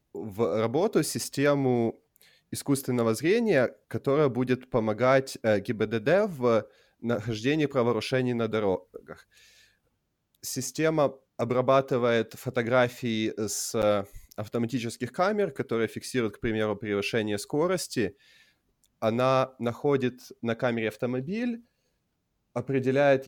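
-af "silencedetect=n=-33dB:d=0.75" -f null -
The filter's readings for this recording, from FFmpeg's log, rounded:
silence_start: 9.12
silence_end: 10.44 | silence_duration: 1.32
silence_start: 18.08
silence_end: 19.02 | silence_duration: 0.94
silence_start: 21.55
silence_end: 22.56 | silence_duration: 1.01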